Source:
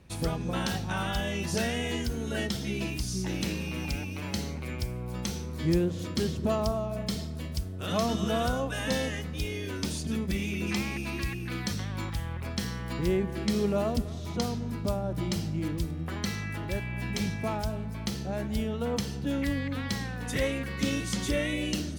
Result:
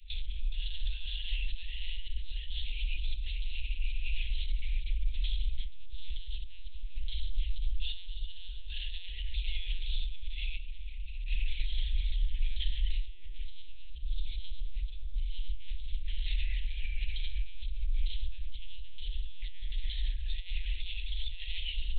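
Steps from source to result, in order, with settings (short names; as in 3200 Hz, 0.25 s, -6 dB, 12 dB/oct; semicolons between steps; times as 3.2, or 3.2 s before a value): HPF 46 Hz 12 dB/oct; air absorption 130 m; notches 50/100/150/200/250/300/350 Hz; reverb RT60 2.1 s, pre-delay 10 ms, DRR 6 dB; soft clip -22 dBFS, distortion -19 dB; 10.58–11.27 low shelf 360 Hz +12 dB; overloaded stage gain 24 dB; negative-ratio compressor -36 dBFS, ratio -1; monotone LPC vocoder at 8 kHz 180 Hz; inverse Chebyshev band-stop 110–1400 Hz, stop band 50 dB; small resonant body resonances 210/300/450/690 Hz, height 9 dB, ringing for 50 ms; gain +11 dB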